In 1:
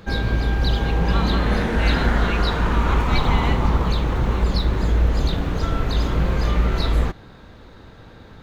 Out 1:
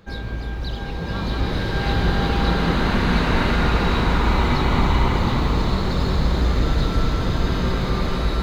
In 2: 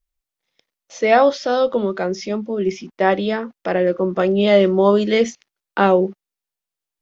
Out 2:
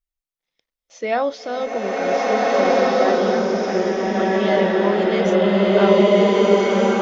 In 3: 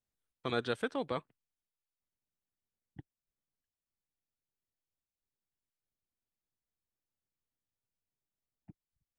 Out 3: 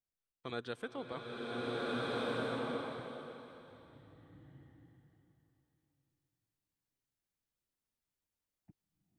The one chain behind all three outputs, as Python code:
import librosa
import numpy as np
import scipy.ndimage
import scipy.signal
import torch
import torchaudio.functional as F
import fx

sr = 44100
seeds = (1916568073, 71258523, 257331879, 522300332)

y = fx.rev_bloom(x, sr, seeds[0], attack_ms=1620, drr_db=-8.5)
y = y * 10.0 ** (-7.5 / 20.0)